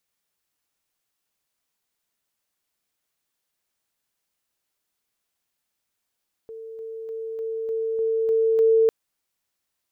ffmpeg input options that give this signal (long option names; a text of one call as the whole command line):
ffmpeg -f lavfi -i "aevalsrc='pow(10,(-35+3*floor(t/0.3))/20)*sin(2*PI*448*t)':duration=2.4:sample_rate=44100" out.wav